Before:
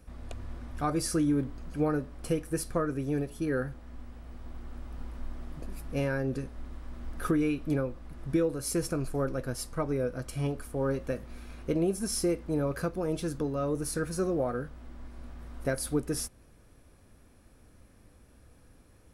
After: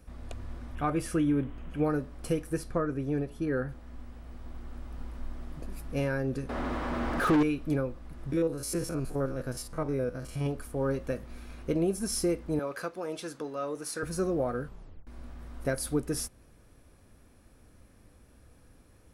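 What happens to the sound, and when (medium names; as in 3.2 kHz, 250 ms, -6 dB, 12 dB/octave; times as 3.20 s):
0.75–1.84 s: resonant high shelf 3.7 kHz -6.5 dB, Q 3
2.57–3.69 s: treble shelf 5 kHz -11.5 dB
6.49–7.43 s: overdrive pedal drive 33 dB, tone 1.1 kHz, clips at -16 dBFS
8.32–10.46 s: spectrogram pixelated in time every 50 ms
12.59–14.03 s: frequency weighting A
14.64 s: tape stop 0.43 s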